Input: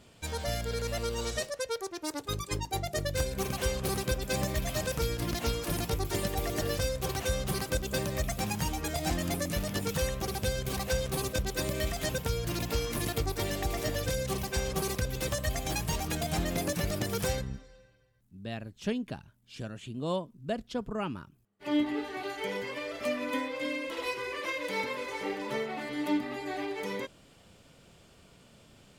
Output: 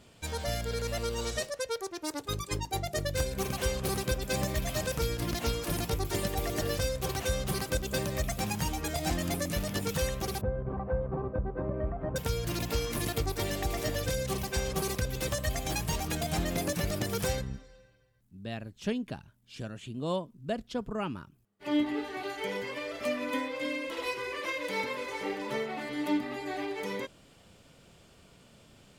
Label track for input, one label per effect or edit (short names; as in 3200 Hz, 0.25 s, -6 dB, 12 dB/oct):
10.410000	12.160000	LPF 1200 Hz 24 dB/oct